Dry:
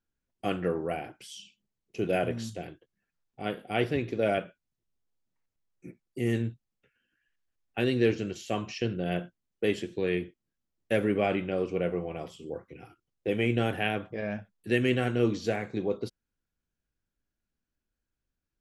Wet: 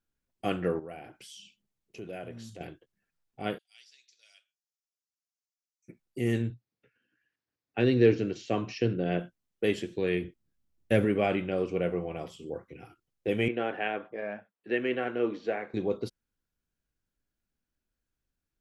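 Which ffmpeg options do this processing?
ffmpeg -i in.wav -filter_complex "[0:a]asettb=1/sr,asplit=3[link_01][link_02][link_03];[link_01]atrim=end=0.794[link_04];[link_02]atrim=start=0.79:end=2.61,asetpts=PTS-STARTPTS,afade=type=in:duration=0.004:curve=qsin,afade=type=out:start_time=1.816:duration=0.004:curve=qsin,acompressor=threshold=-47dB:ratio=2:attack=3.2:release=140:knee=1:detection=peak[link_05];[link_03]atrim=start=2.606[link_06];[link_04][link_05]acrossfade=duration=0.004:curve1=hsin:curve2=qsin[link_07];[link_07][link_06]acrossfade=duration=0.004:curve1=qsin:curve2=hsin,asplit=3[link_08][link_09][link_10];[link_08]afade=type=out:start_time=3.57:duration=0.02[link_11];[link_09]asuperpass=centerf=5900:order=4:qfactor=2.1,afade=type=in:start_time=3.57:duration=0.02,afade=type=out:start_time=5.88:duration=0.02[link_12];[link_10]afade=type=in:start_time=5.88:duration=0.02[link_13];[link_11][link_12][link_13]amix=inputs=3:normalize=0,asettb=1/sr,asplit=3[link_14][link_15][link_16];[link_14]atrim=end=6.504[link_17];[link_15]atrim=start=6.5:end=9.2,asetpts=PTS-STARTPTS,afade=type=in:duration=0.004:curve=qsin,afade=type=out:start_time=2.696:duration=0.004:curve=qsin,highpass=100,equalizer=frequency=120:width_type=q:width=4:gain=6,equalizer=frequency=290:width_type=q:width=4:gain=6,equalizer=frequency=450:width_type=q:width=4:gain=4,equalizer=frequency=3100:width_type=q:width=4:gain=-4,lowpass=frequency=5800:width=0.5412,lowpass=frequency=5800:width=1.3066[link_18];[link_16]atrim=start=9.196[link_19];[link_17][link_18]acrossfade=duration=0.004:curve1=hsin:curve2=qsin[link_20];[link_20][link_19]acrossfade=duration=0.004:curve1=qsin:curve2=hsin,asettb=1/sr,asplit=3[link_21][link_22][link_23];[link_21]atrim=end=10.244[link_24];[link_22]atrim=start=10.24:end=11.05,asetpts=PTS-STARTPTS,afade=type=in:duration=0.004:curve=qsin,afade=type=out:start_time=0.806:duration=0.004:curve=qsin,lowshelf=frequency=200:gain=10[link_25];[link_23]atrim=start=11.046[link_26];[link_24][link_25]acrossfade=duration=0.004:curve1=hsin:curve2=qsin[link_27];[link_27][link_26]acrossfade=duration=0.004:curve1=qsin:curve2=hsin,asettb=1/sr,asplit=3[link_28][link_29][link_30];[link_28]atrim=end=13.484[link_31];[link_29]atrim=start=13.48:end=15.74,asetpts=PTS-STARTPTS,afade=type=in:duration=0.004:curve=qsin,afade=type=out:start_time=2.256:duration=0.004:curve=qsin,highpass=350,lowpass=2200[link_32];[link_30]atrim=start=15.736[link_33];[link_31][link_32]acrossfade=duration=0.004:curve1=hsin:curve2=qsin[link_34];[link_34][link_33]acrossfade=duration=0.004:curve1=qsin:curve2=hsin" out.wav

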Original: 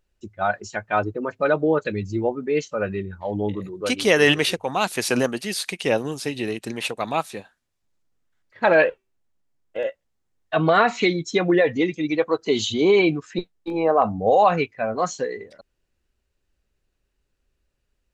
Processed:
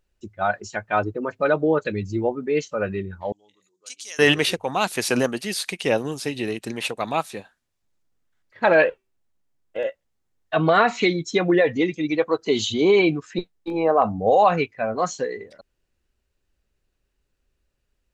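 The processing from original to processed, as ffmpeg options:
ffmpeg -i in.wav -filter_complex "[0:a]asettb=1/sr,asplit=3[link_01][link_02][link_03];[link_01]atrim=end=3.324[link_04];[link_02]atrim=start=3.32:end=4.19,asetpts=PTS-STARTPTS,afade=type=in:duration=0.004:curve=qsin,afade=type=out:start_time=0.866:duration=0.004:curve=qsin,bandpass=frequency=6800:width_type=q:width=3.1[link_05];[link_03]atrim=start=4.186[link_06];[link_04][link_05]acrossfade=duration=0.004:curve1=hsin:curve2=qsin[link_07];[link_07][link_06]acrossfade=duration=0.004:curve1=qsin:curve2=hsin" out.wav

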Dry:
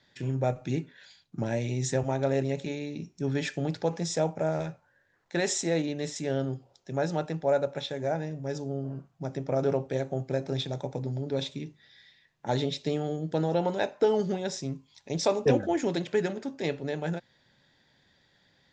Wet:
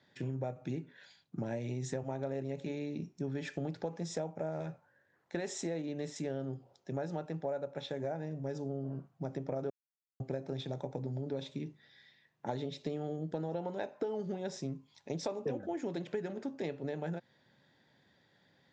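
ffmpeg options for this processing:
ffmpeg -i in.wav -filter_complex "[0:a]asplit=3[link_01][link_02][link_03];[link_01]atrim=end=9.7,asetpts=PTS-STARTPTS,afade=type=out:start_time=9.696:duration=0.004:curve=hsin[link_04];[link_02]atrim=start=9.7:end=10.2,asetpts=PTS-STARTPTS,volume=0[link_05];[link_03]atrim=start=10.2,asetpts=PTS-STARTPTS,afade=type=in:duration=0.004:curve=hsin[link_06];[link_04][link_05][link_06]concat=n=3:v=0:a=1,highpass=110,highshelf=frequency=2100:gain=-8.5,acompressor=threshold=-34dB:ratio=6" out.wav

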